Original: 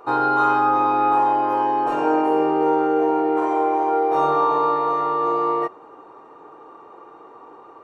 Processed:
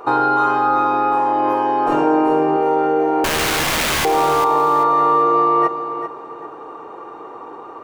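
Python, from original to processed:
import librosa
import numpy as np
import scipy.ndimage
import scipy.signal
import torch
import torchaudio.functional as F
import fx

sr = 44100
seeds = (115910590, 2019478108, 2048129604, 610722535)

p1 = fx.low_shelf(x, sr, hz=240.0, db=8.5, at=(1.88, 2.57))
p2 = fx.over_compress(p1, sr, threshold_db=-23.0, ratio=-0.5)
p3 = p1 + (p2 * librosa.db_to_amplitude(-1.0))
p4 = fx.overflow_wrap(p3, sr, gain_db=14.5, at=(3.24, 4.05))
y = fx.echo_feedback(p4, sr, ms=393, feedback_pct=27, wet_db=-10)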